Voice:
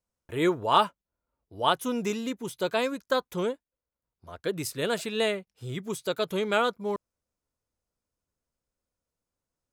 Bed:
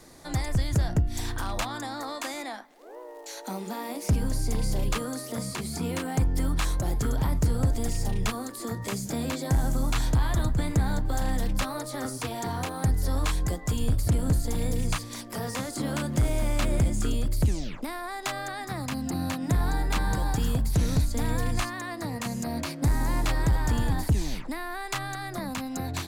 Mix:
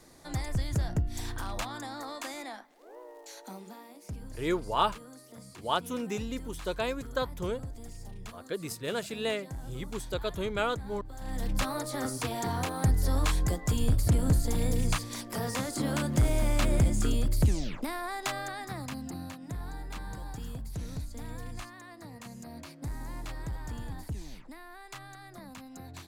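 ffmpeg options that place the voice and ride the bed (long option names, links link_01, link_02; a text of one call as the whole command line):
ffmpeg -i stem1.wav -i stem2.wav -filter_complex "[0:a]adelay=4050,volume=-5dB[link_01];[1:a]volume=11dB,afade=type=out:start_time=3.07:duration=0.83:silence=0.266073,afade=type=in:start_time=11.18:duration=0.5:silence=0.158489,afade=type=out:start_time=18.08:duration=1.3:silence=0.223872[link_02];[link_01][link_02]amix=inputs=2:normalize=0" out.wav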